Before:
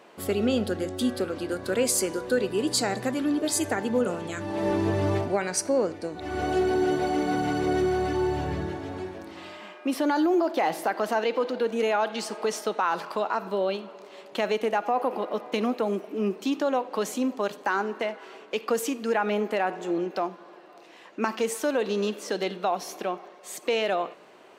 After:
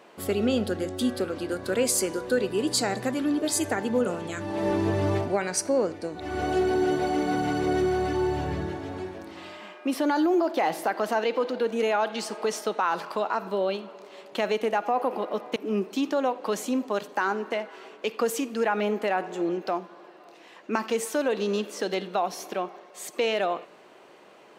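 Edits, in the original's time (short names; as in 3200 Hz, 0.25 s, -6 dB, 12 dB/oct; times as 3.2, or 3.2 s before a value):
15.56–16.05 cut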